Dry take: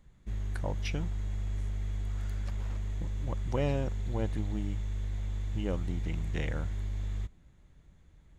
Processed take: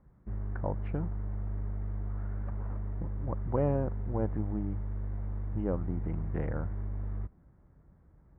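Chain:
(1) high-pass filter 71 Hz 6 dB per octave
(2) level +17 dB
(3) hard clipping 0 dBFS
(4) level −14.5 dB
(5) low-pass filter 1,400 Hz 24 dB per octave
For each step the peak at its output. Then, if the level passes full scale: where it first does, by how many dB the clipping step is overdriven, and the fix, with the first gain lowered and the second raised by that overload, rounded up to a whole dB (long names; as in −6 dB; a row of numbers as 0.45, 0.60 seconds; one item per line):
−19.5, −2.5, −2.5, −17.0, −17.5 dBFS
no step passes full scale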